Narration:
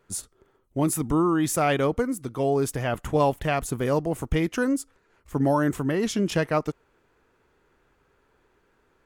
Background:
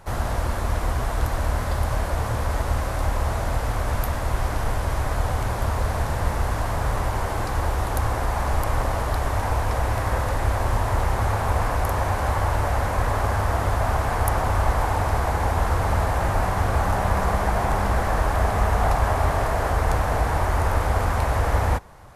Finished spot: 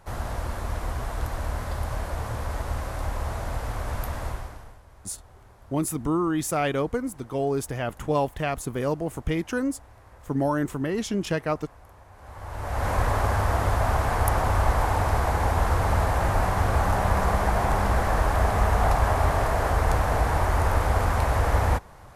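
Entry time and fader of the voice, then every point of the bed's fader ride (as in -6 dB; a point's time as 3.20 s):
4.95 s, -2.5 dB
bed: 4.27 s -6 dB
4.83 s -27.5 dB
12.10 s -27.5 dB
12.89 s -1 dB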